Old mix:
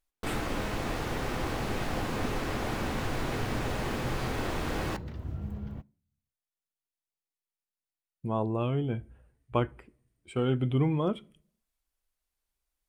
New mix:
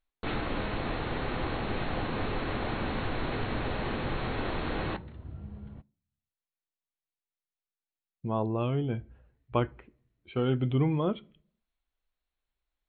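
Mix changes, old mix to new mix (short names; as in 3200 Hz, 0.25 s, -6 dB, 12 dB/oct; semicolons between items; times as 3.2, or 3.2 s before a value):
second sound -6.0 dB; master: add brick-wall FIR low-pass 4400 Hz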